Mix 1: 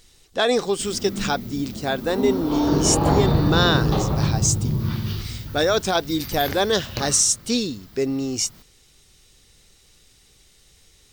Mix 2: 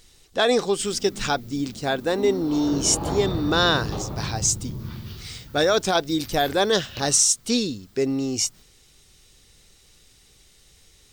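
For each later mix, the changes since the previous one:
background -8.0 dB; reverb: off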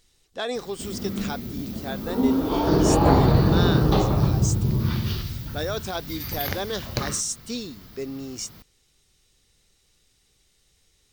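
speech -9.5 dB; background +10.5 dB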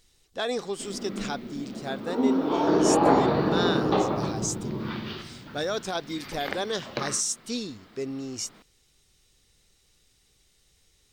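background: add three-band isolator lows -24 dB, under 200 Hz, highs -24 dB, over 3900 Hz

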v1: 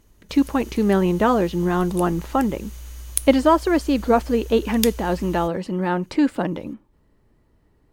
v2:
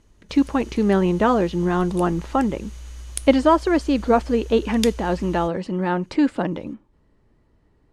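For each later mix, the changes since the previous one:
master: add Bessel low-pass 7500 Hz, order 4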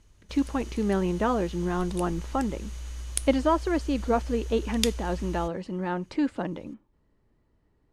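speech -7.5 dB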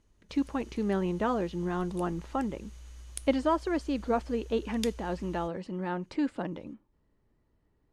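speech -3.5 dB; background -10.5 dB

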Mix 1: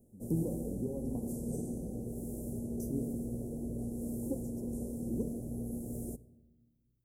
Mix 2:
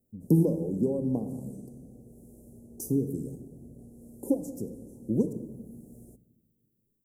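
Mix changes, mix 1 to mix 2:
speech +11.5 dB; background -12.0 dB

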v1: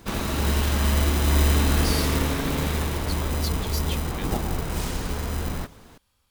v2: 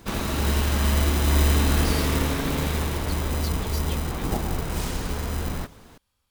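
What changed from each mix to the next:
speech -5.0 dB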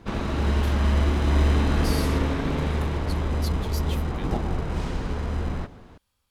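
background: add tape spacing loss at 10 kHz 20 dB; reverb: on, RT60 1.2 s

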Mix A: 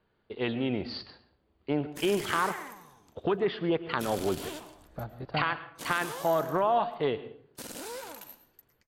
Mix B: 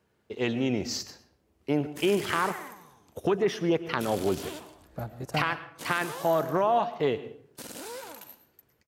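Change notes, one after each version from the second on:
speech: remove rippled Chebyshev low-pass 4700 Hz, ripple 3 dB; master: add HPF 58 Hz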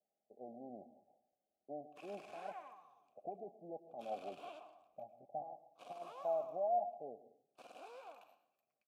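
speech: add rippled Chebyshev low-pass 840 Hz, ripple 9 dB; master: add vowel filter a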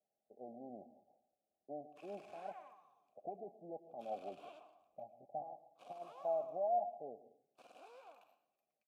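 background -4.5 dB

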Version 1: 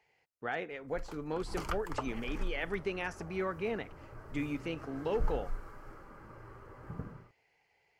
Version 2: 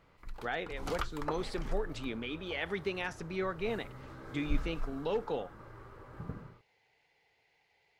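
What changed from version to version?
background: entry -0.70 s; master: add bell 3700 Hz +11 dB 0.32 oct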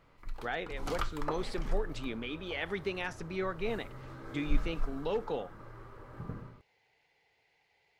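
reverb: on, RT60 0.55 s

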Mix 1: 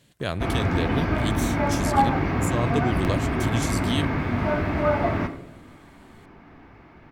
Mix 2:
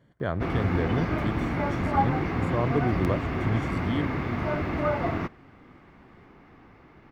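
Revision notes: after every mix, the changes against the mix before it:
speech: add polynomial smoothing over 41 samples; reverb: off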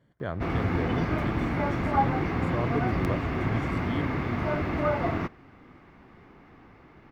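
speech -4.0 dB

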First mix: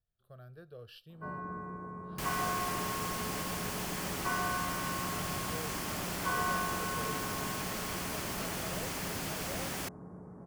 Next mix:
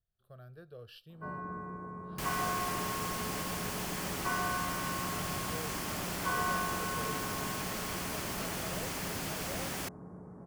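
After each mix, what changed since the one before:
none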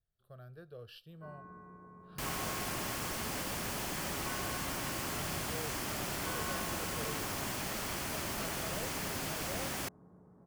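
first sound -11.0 dB

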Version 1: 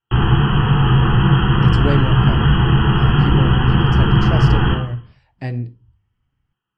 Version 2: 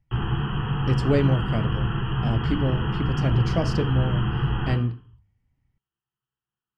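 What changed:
speech: entry -0.75 s; background -11.5 dB

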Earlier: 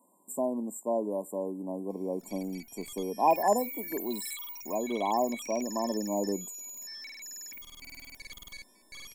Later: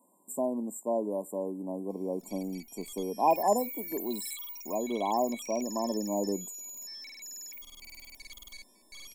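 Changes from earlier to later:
background: add bell 240 Hz -13.5 dB 2.9 oct; master: add bell 1600 Hz -10 dB 0.53 oct

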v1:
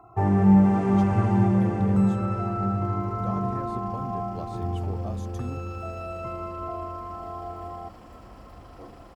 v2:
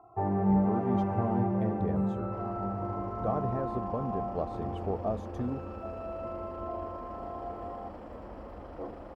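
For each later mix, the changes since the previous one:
first sound -11.0 dB; master: add EQ curve 140 Hz 0 dB, 650 Hz +9 dB, 7400 Hz -14 dB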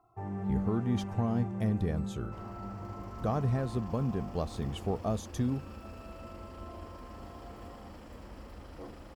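speech +6.0 dB; first sound -5.5 dB; master: add EQ curve 140 Hz 0 dB, 650 Hz -9 dB, 7400 Hz +14 dB

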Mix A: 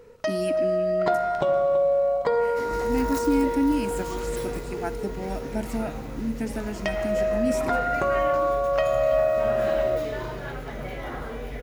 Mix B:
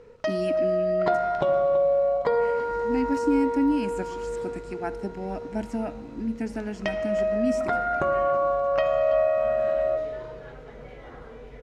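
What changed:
second sound -10.5 dB; master: add air absorption 75 m

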